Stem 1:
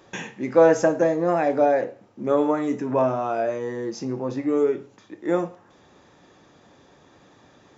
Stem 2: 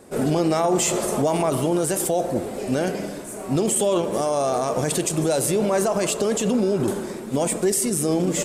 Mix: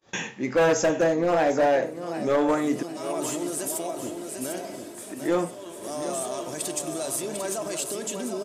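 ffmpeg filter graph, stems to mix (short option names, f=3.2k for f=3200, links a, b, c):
-filter_complex "[0:a]volume=-0.5dB,asplit=3[a][b][c];[a]atrim=end=2.83,asetpts=PTS-STARTPTS,afade=t=out:st=2.826:d=0.004:c=hsin[d];[b]atrim=start=2.83:end=4.96,asetpts=PTS-STARTPTS,volume=0[e];[c]atrim=start=4.96,asetpts=PTS-STARTPTS,afade=t=in:d=0.004:c=hsin[f];[d][e][f]concat=n=3:v=0:a=1,asplit=3[g][h][i];[h]volume=-13.5dB[j];[1:a]highpass=110,aecho=1:1:3.1:0.43,adelay=1700,volume=-12.5dB,asplit=2[k][l];[l]volume=-6dB[m];[i]apad=whole_len=447539[n];[k][n]sidechaincompress=threshold=-40dB:ratio=8:attack=16:release=318[o];[j][m]amix=inputs=2:normalize=0,aecho=0:1:748|1496|2244|2992:1|0.3|0.09|0.027[p];[g][o][p]amix=inputs=3:normalize=0,agate=range=-31dB:threshold=-53dB:ratio=16:detection=peak,highshelf=f=2.4k:g=7.5,volume=16.5dB,asoftclip=hard,volume=-16.5dB"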